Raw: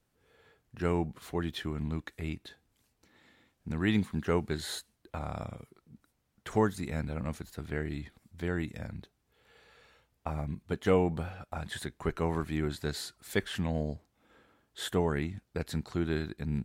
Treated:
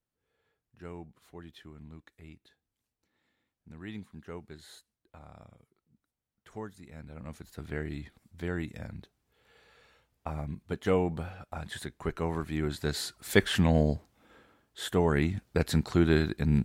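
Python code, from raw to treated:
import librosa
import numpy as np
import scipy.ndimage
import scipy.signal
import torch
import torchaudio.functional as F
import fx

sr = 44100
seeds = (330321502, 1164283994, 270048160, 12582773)

y = fx.gain(x, sr, db=fx.line((6.89, -14.0), (7.63, -1.0), (12.44, -1.0), (13.44, 8.0), (13.94, 8.0), (14.8, -0.5), (15.3, 7.5)))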